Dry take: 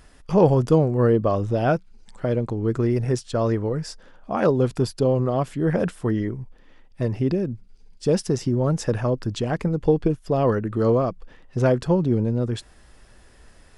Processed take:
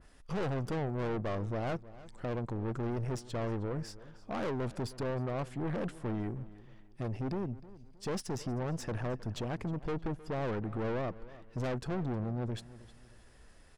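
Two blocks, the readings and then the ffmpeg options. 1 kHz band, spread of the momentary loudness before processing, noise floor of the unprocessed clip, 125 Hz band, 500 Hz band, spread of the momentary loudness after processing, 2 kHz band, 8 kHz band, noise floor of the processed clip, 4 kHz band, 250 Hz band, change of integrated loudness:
-12.0 dB, 9 LU, -51 dBFS, -13.0 dB, -15.5 dB, 9 LU, -9.0 dB, -11.0 dB, -57 dBFS, -10.0 dB, -14.0 dB, -14.5 dB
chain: -filter_complex "[0:a]aeval=exprs='(tanh(20*val(0)+0.45)-tanh(0.45))/20':c=same,asplit=2[a][b];[b]adelay=313,lowpass=f=4.3k:p=1,volume=-18dB,asplit=2[c][d];[d]adelay=313,lowpass=f=4.3k:p=1,volume=0.34,asplit=2[e][f];[f]adelay=313,lowpass=f=4.3k:p=1,volume=0.34[g];[a][c][e][g]amix=inputs=4:normalize=0,adynamicequalizer=threshold=0.00355:dfrequency=2600:dqfactor=0.7:tfrequency=2600:tqfactor=0.7:attack=5:release=100:ratio=0.375:range=2:mode=cutabove:tftype=highshelf,volume=-6dB"

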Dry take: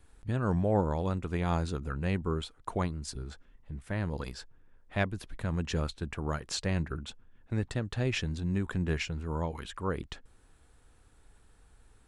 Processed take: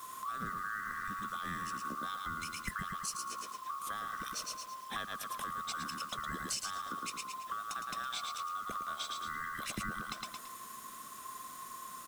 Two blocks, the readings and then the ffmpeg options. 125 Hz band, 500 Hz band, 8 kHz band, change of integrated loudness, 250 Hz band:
-21.5 dB, -19.5 dB, +4.5 dB, -6.5 dB, -15.0 dB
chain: -filter_complex "[0:a]afftfilt=real='real(if(lt(b,960),b+48*(1-2*mod(floor(b/48),2)),b),0)':imag='imag(if(lt(b,960),b+48*(1-2*mod(floor(b/48),2)),b),0)':win_size=2048:overlap=0.75,asplit=2[a][b];[b]aecho=0:1:111|222|333|444:0.501|0.155|0.0482|0.0149[c];[a][c]amix=inputs=2:normalize=0,acompressor=threshold=-44dB:ratio=4,equalizer=f=210:w=1.7:g=11.5,crystalizer=i=3.5:c=0,acrossover=split=170[d][e];[e]acompressor=threshold=-45dB:ratio=2.5[f];[d][f]amix=inputs=2:normalize=0,acrusher=bits=9:mix=0:aa=0.000001,volume=6.5dB"

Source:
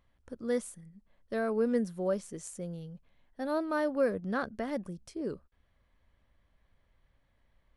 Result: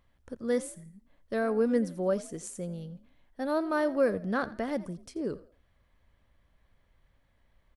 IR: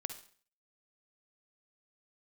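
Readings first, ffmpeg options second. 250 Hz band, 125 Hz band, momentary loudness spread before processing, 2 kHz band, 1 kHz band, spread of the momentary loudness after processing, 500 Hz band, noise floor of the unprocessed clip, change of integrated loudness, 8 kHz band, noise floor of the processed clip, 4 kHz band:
+2.5 dB, +2.5 dB, 15 LU, +2.5 dB, +2.5 dB, 16 LU, +2.5 dB, -72 dBFS, +2.5 dB, +2.5 dB, -69 dBFS, +2.5 dB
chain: -filter_complex "[0:a]asplit=4[a][b][c][d];[b]adelay=84,afreqshift=42,volume=-18dB[e];[c]adelay=168,afreqshift=84,volume=-28.5dB[f];[d]adelay=252,afreqshift=126,volume=-38.9dB[g];[a][e][f][g]amix=inputs=4:normalize=0,volume=2.5dB"

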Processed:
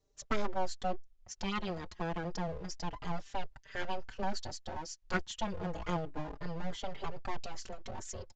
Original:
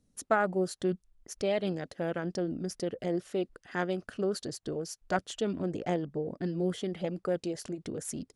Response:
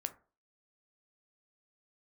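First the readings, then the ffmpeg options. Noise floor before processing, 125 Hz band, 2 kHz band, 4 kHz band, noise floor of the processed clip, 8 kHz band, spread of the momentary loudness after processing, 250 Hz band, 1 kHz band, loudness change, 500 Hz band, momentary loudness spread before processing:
-76 dBFS, -4.5 dB, -3.5 dB, -1.0 dB, -65 dBFS, -4.0 dB, 7 LU, -8.0 dB, -1.0 dB, -6.5 dB, -9.5 dB, 7 LU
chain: -filter_complex "[0:a]acrossover=split=100|1400|3100[a][b][c][d];[b]aeval=exprs='abs(val(0))':c=same[e];[a][e][c][d]amix=inputs=4:normalize=0,aresample=16000,aresample=44100,asplit=2[f][g];[g]adelay=4.6,afreqshift=-0.29[h];[f][h]amix=inputs=2:normalize=1,volume=1.5dB"

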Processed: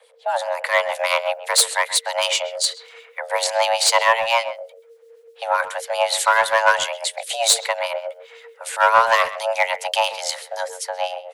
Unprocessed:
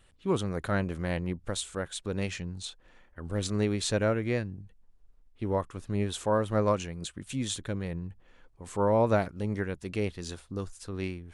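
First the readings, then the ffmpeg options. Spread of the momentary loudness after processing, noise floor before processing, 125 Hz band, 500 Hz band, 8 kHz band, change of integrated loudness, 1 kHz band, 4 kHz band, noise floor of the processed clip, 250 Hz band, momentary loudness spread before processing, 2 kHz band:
13 LU, -61 dBFS, under -25 dB, +8.0 dB, +17.5 dB, +11.5 dB, +17.0 dB, +18.5 dB, -50 dBFS, under -25 dB, 12 LU, +18.5 dB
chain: -filter_complex "[0:a]acrossover=split=210|1000[a][b][c];[c]dynaudnorm=f=110:g=13:m=11.5dB[d];[a][b][d]amix=inputs=3:normalize=0,acrossover=split=2300[e][f];[e]aeval=exprs='val(0)*(1-0.7/2+0.7/2*cos(2*PI*7.8*n/s))':c=same[g];[f]aeval=exprs='val(0)*(1-0.7/2-0.7/2*cos(2*PI*7.8*n/s))':c=same[h];[g][h]amix=inputs=2:normalize=0,aeval=exprs='clip(val(0),-1,0.0794)':c=same,afreqshift=450,acontrast=47,asplit=2[i][j];[j]adelay=130,highpass=300,lowpass=3.4k,asoftclip=type=hard:threshold=-15.5dB,volume=-14dB[k];[i][k]amix=inputs=2:normalize=0,volume=5dB"

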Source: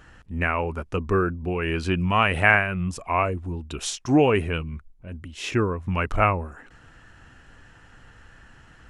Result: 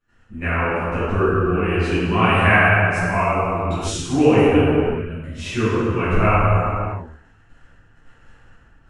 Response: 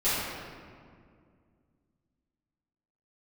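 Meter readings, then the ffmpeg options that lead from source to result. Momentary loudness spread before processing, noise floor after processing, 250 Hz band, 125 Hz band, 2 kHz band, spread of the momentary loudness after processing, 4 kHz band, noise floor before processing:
16 LU, -53 dBFS, +6.5 dB, +7.0 dB, +4.5 dB, 12 LU, +3.0 dB, -52 dBFS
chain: -filter_complex "[0:a]agate=range=-23dB:threshold=-47dB:ratio=16:detection=peak[a];[1:a]atrim=start_sample=2205,afade=t=out:st=0.43:d=0.01,atrim=end_sample=19404,asetrate=24255,aresample=44100[b];[a][b]afir=irnorm=-1:irlink=0,volume=-12dB"

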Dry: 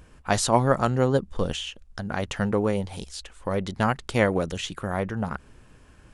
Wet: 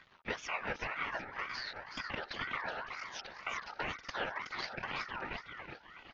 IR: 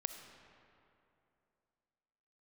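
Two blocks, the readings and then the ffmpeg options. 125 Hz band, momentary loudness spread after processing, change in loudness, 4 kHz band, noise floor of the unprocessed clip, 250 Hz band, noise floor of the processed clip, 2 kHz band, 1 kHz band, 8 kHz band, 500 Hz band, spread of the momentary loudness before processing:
-26.5 dB, 6 LU, -14.0 dB, -9.0 dB, -53 dBFS, -23.5 dB, -60 dBFS, -4.5 dB, -12.0 dB, -20.5 dB, -20.5 dB, 13 LU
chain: -filter_complex "[0:a]afftfilt=real='hypot(re,im)*cos(2*PI*random(0))':imag='hypot(re,im)*sin(2*PI*random(1))':win_size=512:overlap=0.75,acompressor=threshold=-41dB:ratio=4,aemphasis=mode=production:type=75kf,aresample=11025,aeval=exprs='sgn(val(0))*max(abs(val(0))-0.001,0)':c=same,aresample=44100,highpass=160,lowpass=2.8k,asplit=6[a][b][c][d][e][f];[b]adelay=371,afreqshift=32,volume=-7dB[g];[c]adelay=742,afreqshift=64,volume=-14.3dB[h];[d]adelay=1113,afreqshift=96,volume=-21.7dB[i];[e]adelay=1484,afreqshift=128,volume=-29dB[j];[f]adelay=1855,afreqshift=160,volume=-36.3dB[k];[a][g][h][i][j][k]amix=inputs=6:normalize=0,aeval=exprs='val(0)*sin(2*PI*1400*n/s+1400*0.25/2*sin(2*PI*2*n/s))':c=same,volume=6.5dB"

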